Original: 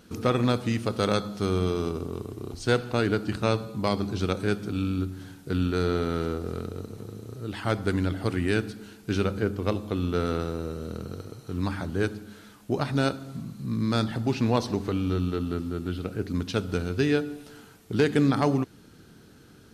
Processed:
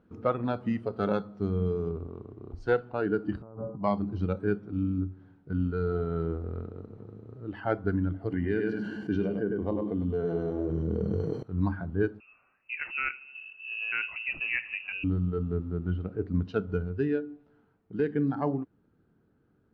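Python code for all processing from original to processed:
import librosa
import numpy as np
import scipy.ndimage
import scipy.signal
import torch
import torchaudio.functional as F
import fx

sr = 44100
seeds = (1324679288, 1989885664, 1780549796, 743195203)

y = fx.chain(x, sr, fx.lowpass(hz=1200.0, slope=24),
    fx.over_compress(threshold_db=-35.0, ratio=-1.0), at=(3.42, 3.83))
y = fx.chain(y, sr, fx.notch_comb(f0_hz=1300.0),
    fx.echo_feedback(ms=100, feedback_pct=24, wet_db=-6),
    fx.env_flatten(amount_pct=70), at=(8.32, 11.43))
y = fx.chain(y, sr, fx.air_absorb(metres=170.0),
    fx.freq_invert(carrier_hz=2800), at=(12.2, 15.04))
y = fx.noise_reduce_blind(y, sr, reduce_db=11)
y = scipy.signal.sosfilt(scipy.signal.butter(2, 1300.0, 'lowpass', fs=sr, output='sos'), y)
y = fx.rider(y, sr, range_db=5, speed_s=0.5)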